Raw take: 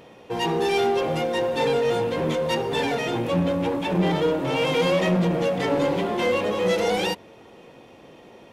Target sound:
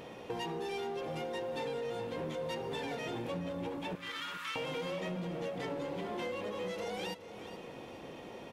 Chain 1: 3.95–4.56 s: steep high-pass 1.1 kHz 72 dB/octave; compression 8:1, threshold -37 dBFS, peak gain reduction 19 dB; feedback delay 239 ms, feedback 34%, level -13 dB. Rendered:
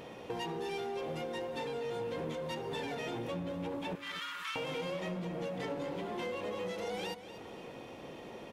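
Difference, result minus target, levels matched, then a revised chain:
echo 182 ms early
3.95–4.56 s: steep high-pass 1.1 kHz 72 dB/octave; compression 8:1, threshold -37 dBFS, peak gain reduction 19 dB; feedback delay 421 ms, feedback 34%, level -13 dB

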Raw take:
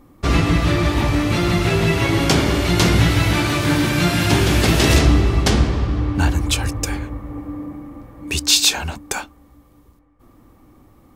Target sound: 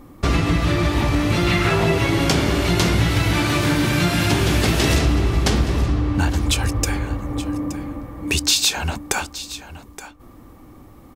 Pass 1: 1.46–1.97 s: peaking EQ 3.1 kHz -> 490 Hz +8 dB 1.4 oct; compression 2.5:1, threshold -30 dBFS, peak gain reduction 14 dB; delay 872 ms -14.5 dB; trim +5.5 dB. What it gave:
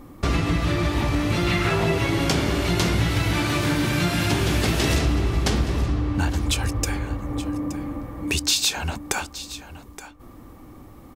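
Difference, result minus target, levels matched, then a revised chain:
compression: peak gain reduction +3.5 dB
1.46–1.97 s: peaking EQ 3.1 kHz -> 490 Hz +8 dB 1.4 oct; compression 2.5:1, threshold -24 dBFS, peak gain reduction 10.5 dB; delay 872 ms -14.5 dB; trim +5.5 dB

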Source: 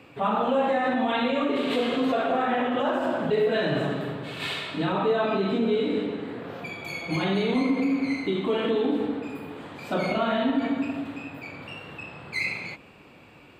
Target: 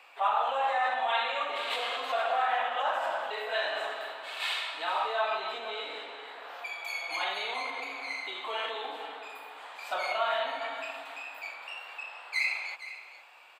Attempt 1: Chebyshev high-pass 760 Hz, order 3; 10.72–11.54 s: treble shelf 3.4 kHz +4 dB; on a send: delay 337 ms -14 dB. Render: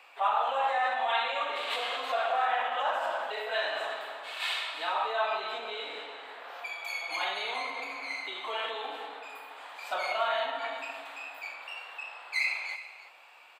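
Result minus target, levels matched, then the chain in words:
echo 125 ms early
Chebyshev high-pass 760 Hz, order 3; 10.72–11.54 s: treble shelf 3.4 kHz +4 dB; on a send: delay 462 ms -14 dB

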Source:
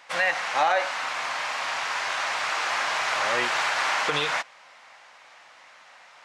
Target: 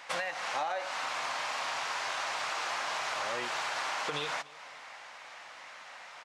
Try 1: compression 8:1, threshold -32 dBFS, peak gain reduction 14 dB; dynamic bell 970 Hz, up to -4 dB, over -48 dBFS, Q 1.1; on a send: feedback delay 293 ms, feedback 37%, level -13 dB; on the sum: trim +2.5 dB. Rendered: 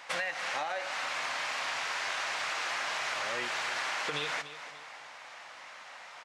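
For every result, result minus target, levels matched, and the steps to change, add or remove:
echo-to-direct +9.5 dB; 1 kHz band -2.5 dB
change: feedback delay 293 ms, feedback 37%, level -22.5 dB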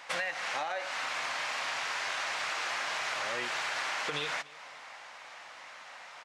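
1 kHz band -2.5 dB
change: dynamic bell 1.9 kHz, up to -4 dB, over -48 dBFS, Q 1.1

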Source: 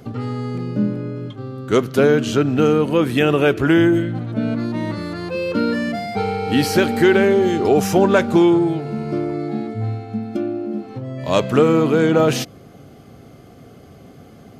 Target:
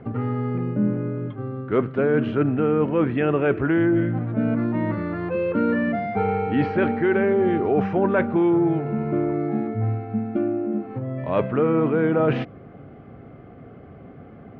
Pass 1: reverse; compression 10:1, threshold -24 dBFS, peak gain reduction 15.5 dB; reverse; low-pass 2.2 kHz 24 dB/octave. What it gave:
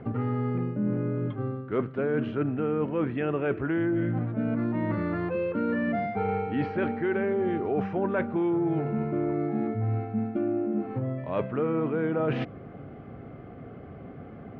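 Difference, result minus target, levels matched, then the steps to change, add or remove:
compression: peak gain reduction +7 dB
change: compression 10:1, threshold -16 dBFS, peak gain reduction 8 dB

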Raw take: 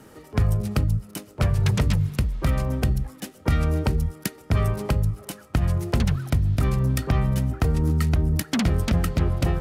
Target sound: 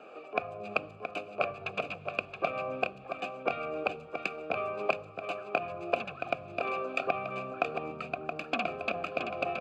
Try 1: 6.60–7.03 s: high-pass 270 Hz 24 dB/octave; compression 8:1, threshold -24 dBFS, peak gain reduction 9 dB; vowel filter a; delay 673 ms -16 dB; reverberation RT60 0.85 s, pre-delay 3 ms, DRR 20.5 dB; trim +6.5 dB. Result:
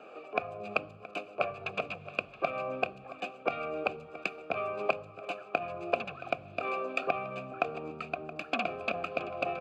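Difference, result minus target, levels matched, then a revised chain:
echo-to-direct -8 dB
6.60–7.03 s: high-pass 270 Hz 24 dB/octave; compression 8:1, threshold -24 dBFS, peak gain reduction 9 dB; vowel filter a; delay 673 ms -7 dB; reverberation RT60 0.85 s, pre-delay 3 ms, DRR 20.5 dB; trim +6.5 dB

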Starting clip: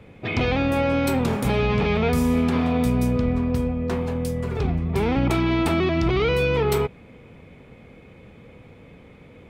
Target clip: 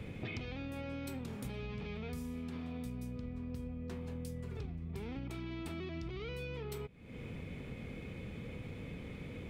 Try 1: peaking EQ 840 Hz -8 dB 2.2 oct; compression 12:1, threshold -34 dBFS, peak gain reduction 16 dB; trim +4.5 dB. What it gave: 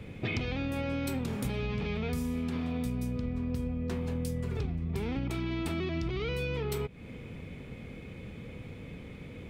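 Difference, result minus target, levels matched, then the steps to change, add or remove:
compression: peak gain reduction -9 dB
change: compression 12:1, threshold -44 dBFS, peak gain reduction 25.5 dB

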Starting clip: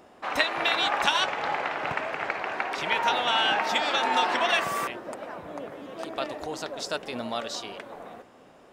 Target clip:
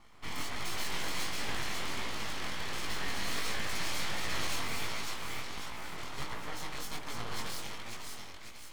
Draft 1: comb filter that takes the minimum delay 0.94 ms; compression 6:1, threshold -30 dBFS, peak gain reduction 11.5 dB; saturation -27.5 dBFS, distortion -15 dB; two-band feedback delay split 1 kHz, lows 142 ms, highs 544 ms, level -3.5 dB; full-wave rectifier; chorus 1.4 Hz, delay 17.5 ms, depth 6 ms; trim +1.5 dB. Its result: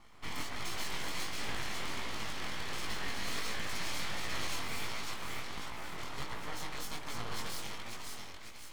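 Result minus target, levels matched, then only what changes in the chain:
compression: peak gain reduction +5 dB
change: compression 6:1, threshold -24 dBFS, peak gain reduction 6.5 dB

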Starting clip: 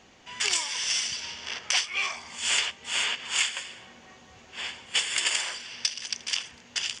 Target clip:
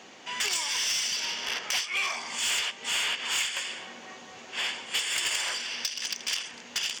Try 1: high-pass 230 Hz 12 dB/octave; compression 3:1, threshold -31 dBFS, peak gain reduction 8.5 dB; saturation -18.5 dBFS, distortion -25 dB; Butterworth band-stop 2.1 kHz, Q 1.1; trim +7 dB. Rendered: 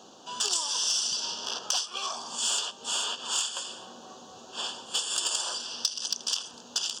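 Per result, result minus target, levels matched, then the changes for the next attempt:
2 kHz band -11.0 dB; saturation: distortion -13 dB
remove: Butterworth band-stop 2.1 kHz, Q 1.1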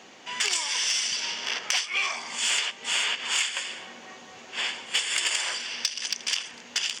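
saturation: distortion -13 dB
change: saturation -29 dBFS, distortion -12 dB

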